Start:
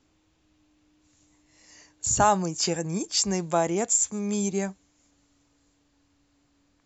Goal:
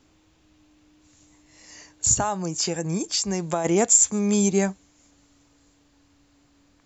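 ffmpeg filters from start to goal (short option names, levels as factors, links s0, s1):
-filter_complex "[0:a]asplit=3[s0][s1][s2];[s0]afade=t=out:st=2.13:d=0.02[s3];[s1]acompressor=threshold=0.0355:ratio=6,afade=t=in:st=2.13:d=0.02,afade=t=out:st=3.64:d=0.02[s4];[s2]afade=t=in:st=3.64:d=0.02[s5];[s3][s4][s5]amix=inputs=3:normalize=0,volume=2.11"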